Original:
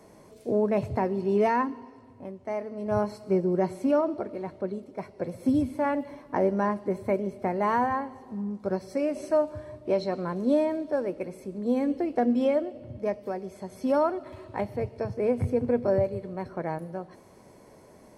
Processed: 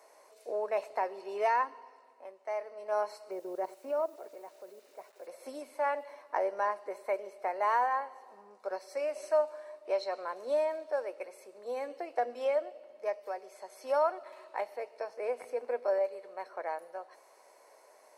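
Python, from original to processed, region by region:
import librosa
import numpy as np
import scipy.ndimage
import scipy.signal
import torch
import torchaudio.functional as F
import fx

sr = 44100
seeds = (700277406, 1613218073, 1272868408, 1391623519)

y = fx.chain(x, sr, fx.level_steps(step_db=13),
    fx.tilt_shelf(db=6.0, hz=730.0),
    fx.quant_dither(seeds[0], bits=10, dither='none'), at=(3.31, 5.27))
y = scipy.signal.sosfilt(scipy.signal.butter(4, 550.0, 'highpass', fs=sr, output='sos'), y)
y = fx.notch(y, sr, hz=3300.0, q=11.0)
y = y * librosa.db_to_amplitude(-2.0)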